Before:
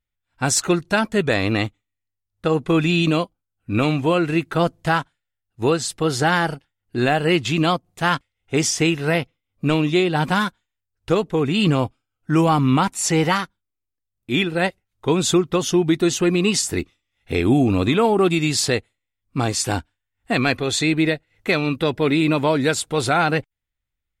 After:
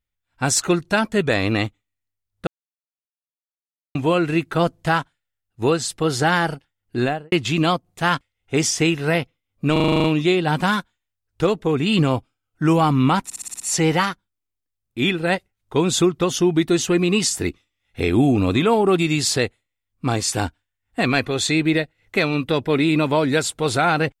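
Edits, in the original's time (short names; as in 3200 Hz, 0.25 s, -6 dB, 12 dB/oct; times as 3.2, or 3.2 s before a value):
2.47–3.95 mute
6.97–7.32 studio fade out
9.72 stutter 0.04 s, 9 plays
12.92 stutter 0.06 s, 7 plays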